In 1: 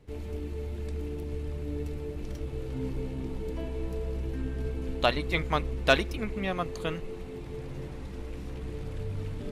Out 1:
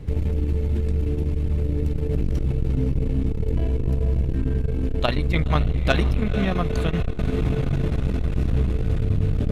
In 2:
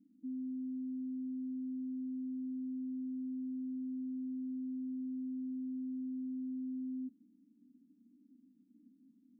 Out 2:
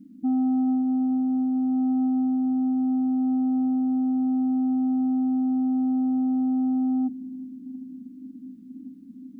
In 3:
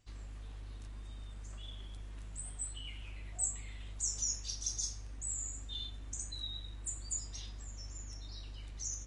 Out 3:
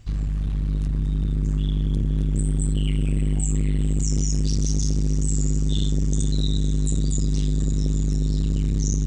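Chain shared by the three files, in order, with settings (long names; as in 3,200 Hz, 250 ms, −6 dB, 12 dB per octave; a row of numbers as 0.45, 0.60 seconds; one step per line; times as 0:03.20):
in parallel at −1 dB: compressor whose output falls as the input rises −39 dBFS, ratio −0.5
on the sum: bass and treble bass +10 dB, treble −2 dB
notch filter 920 Hz, Q 26
feedback delay with all-pass diffusion 508 ms, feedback 76%, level −12 dB
saturating transformer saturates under 210 Hz
loudness normalisation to −24 LKFS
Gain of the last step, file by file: +3.5, +8.5, +9.5 decibels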